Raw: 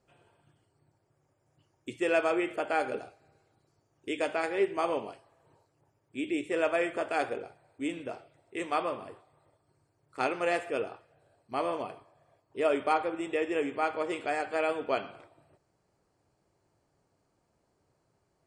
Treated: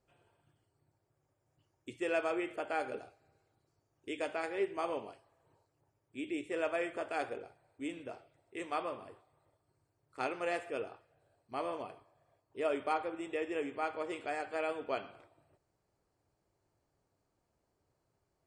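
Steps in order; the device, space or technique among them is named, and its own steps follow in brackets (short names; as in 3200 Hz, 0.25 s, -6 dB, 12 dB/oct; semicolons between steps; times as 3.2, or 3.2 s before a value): low shelf boost with a cut just above (low shelf 94 Hz +5.5 dB; bell 170 Hz -3 dB 0.86 oct); gain -6.5 dB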